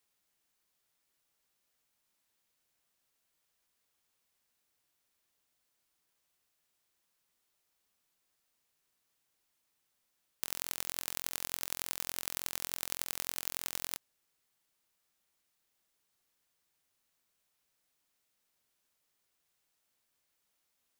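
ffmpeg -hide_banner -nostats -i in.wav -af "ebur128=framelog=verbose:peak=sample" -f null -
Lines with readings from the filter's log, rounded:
Integrated loudness:
  I:         -36.9 LUFS
  Threshold: -46.9 LUFS
Loudness range:
  LRA:         9.1 LU
  Threshold: -59.1 LUFS
  LRA low:   -45.6 LUFS
  LRA high:  -36.5 LUFS
Sample peak:
  Peak:       -5.9 dBFS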